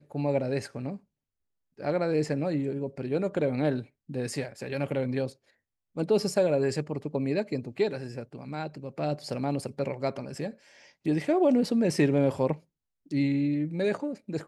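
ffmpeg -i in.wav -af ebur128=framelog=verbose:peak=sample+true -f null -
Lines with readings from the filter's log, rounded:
Integrated loudness:
  I:         -29.2 LUFS
  Threshold: -39.5 LUFS
Loudness range:
  LRA:         5.6 LU
  Threshold: -49.7 LUFS
  LRA low:   -32.5 LUFS
  LRA high:  -26.9 LUFS
Sample peak:
  Peak:      -11.8 dBFS
True peak:
  Peak:      -11.8 dBFS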